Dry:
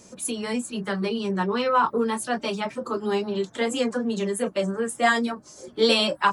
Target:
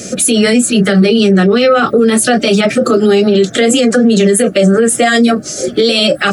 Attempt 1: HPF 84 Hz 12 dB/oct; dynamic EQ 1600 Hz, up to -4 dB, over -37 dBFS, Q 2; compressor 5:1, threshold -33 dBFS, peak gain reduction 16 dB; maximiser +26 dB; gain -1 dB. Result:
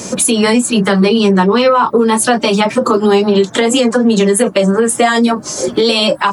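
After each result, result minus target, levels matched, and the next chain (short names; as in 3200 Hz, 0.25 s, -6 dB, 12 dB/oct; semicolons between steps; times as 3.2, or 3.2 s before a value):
compressor: peak gain reduction +7.5 dB; 1000 Hz band +5.0 dB
HPF 84 Hz 12 dB/oct; dynamic EQ 1600 Hz, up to -4 dB, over -37 dBFS, Q 2; compressor 5:1, threshold -24 dBFS, peak gain reduction 8.5 dB; maximiser +26 dB; gain -1 dB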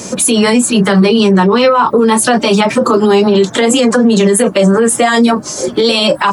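1000 Hz band +4.5 dB
HPF 84 Hz 12 dB/oct; dynamic EQ 1600 Hz, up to -4 dB, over -37 dBFS, Q 2; Butterworth band-stop 970 Hz, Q 1.8; compressor 5:1, threshold -24 dBFS, peak gain reduction 8.5 dB; maximiser +26 dB; gain -1 dB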